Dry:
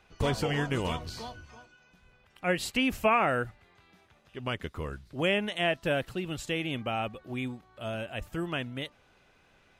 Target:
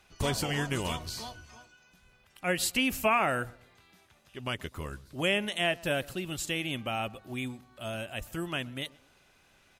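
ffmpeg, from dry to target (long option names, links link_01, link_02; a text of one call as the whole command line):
ffmpeg -i in.wav -filter_complex "[0:a]equalizer=frequency=13000:width_type=o:width=2:gain=12.5,bandreject=frequency=470:width=12,asplit=2[link_01][link_02];[link_02]adelay=125,lowpass=frequency=1300:poles=1,volume=-21dB,asplit=2[link_03][link_04];[link_04]adelay=125,lowpass=frequency=1300:poles=1,volume=0.4,asplit=2[link_05][link_06];[link_06]adelay=125,lowpass=frequency=1300:poles=1,volume=0.4[link_07];[link_03][link_05][link_07]amix=inputs=3:normalize=0[link_08];[link_01][link_08]amix=inputs=2:normalize=0,volume=-2dB" out.wav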